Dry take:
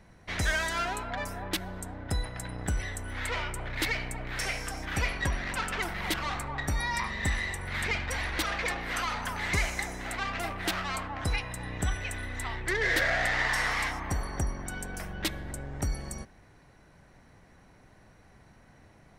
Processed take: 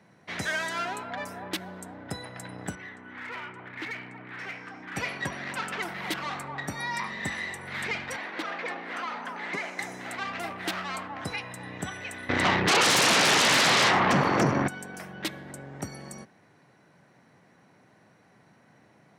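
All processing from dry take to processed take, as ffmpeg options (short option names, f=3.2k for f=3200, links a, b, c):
-filter_complex "[0:a]asettb=1/sr,asplit=3[a][b][c];[a]atrim=end=2.754[d];[b]atrim=start=2.75:end=4.96,asetpts=PTS-STARTPTS,afade=t=in:d=0.004:c=qsin,afade=t=out:st=2.206:d=0.004:c=qsin,highpass=150,lowpass=2.2k,aeval=exprs='clip(val(0),-1,0.0237)':c=same,equalizer=f=590:t=o:w=0.93:g=-9.5[e];[c]atrim=start=4.956[f];[d][e]acrossfade=d=0.004:c1=hsin:c2=qsin[g];[g][f]acrossfade=d=0.004:c1=qsin:c2=hsin,asettb=1/sr,asplit=3[h][i][j];[h]atrim=end=8.164[k];[i]atrim=start=8.16:end=9.79,asetpts=PTS-STARTPTS,afade=t=in:d=0.004:c=qsin,afade=t=out:st=1.626:d=0.004:c=qsin,highpass=f=200:w=0.5412,highpass=f=200:w=1.3066,aemphasis=mode=reproduction:type=75kf[l];[j]atrim=start=9.786[m];[k][l]acrossfade=d=0.004:c1=hsin:c2=qsin[n];[n][m]acrossfade=d=0.004:c1=qsin:c2=hsin,asettb=1/sr,asplit=3[o][p][q];[o]atrim=end=12.294[r];[p]atrim=start=12.29:end=14.68,asetpts=PTS-STARTPTS,afade=t=in:d=0.004:c=qsin,afade=t=out:st=2.386:d=0.004:c=qsin,lowpass=6.2k,highshelf=f=2.7k:g=-9.5,aeval=exprs='0.141*sin(PI/2*7.08*val(0)/0.141)':c=same[s];[q]atrim=start=14.676[t];[r][s]acrossfade=d=0.004:c1=hsin:c2=qsin[u];[u][t]acrossfade=d=0.004:c1=qsin:c2=hsin,highpass=f=130:w=0.5412,highpass=f=130:w=1.3066,highshelf=f=5.9k:g=-5"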